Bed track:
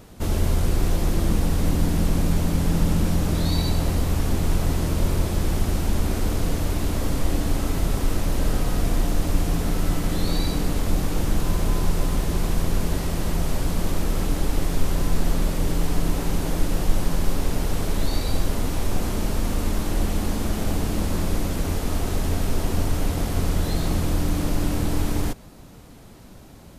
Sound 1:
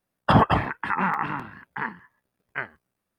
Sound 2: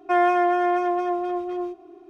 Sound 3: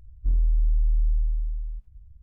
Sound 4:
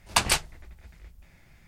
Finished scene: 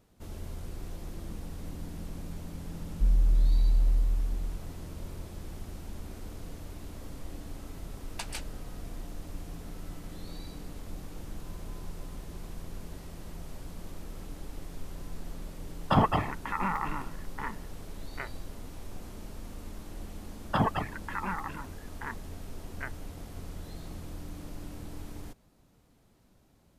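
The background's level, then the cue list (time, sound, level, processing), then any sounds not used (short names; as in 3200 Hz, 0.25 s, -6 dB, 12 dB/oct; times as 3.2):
bed track -19 dB
2.76 add 3 -1.5 dB
8.03 add 4 -16.5 dB + notch 1100 Hz, Q 5.6
15.62 add 1 -6 dB + notch 1600 Hz, Q 5.6
20.25 add 1 -9 dB + reverb removal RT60 0.78 s
not used: 2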